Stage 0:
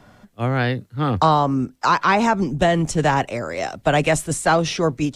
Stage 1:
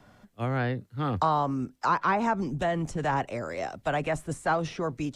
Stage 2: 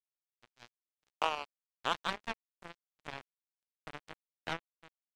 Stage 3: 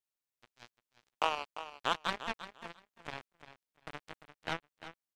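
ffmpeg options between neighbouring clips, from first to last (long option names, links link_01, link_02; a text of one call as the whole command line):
ffmpeg -i in.wav -filter_complex "[0:a]acrossover=split=700|1900[link_01][link_02][link_03];[link_01]alimiter=limit=-16.5dB:level=0:latency=1[link_04];[link_03]acompressor=threshold=-37dB:ratio=6[link_05];[link_04][link_02][link_05]amix=inputs=3:normalize=0,volume=-7dB" out.wav
ffmpeg -i in.wav -af "acrusher=bits=2:mix=0:aa=0.5,volume=-5dB" out.wav
ffmpeg -i in.wav -af "aecho=1:1:347|694:0.237|0.0427,volume=1dB" out.wav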